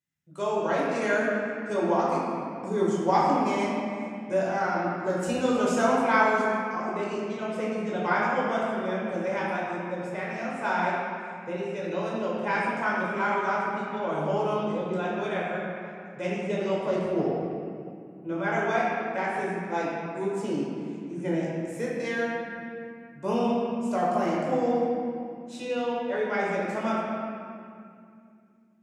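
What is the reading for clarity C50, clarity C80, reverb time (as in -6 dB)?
-2.0 dB, -0.5 dB, 2.3 s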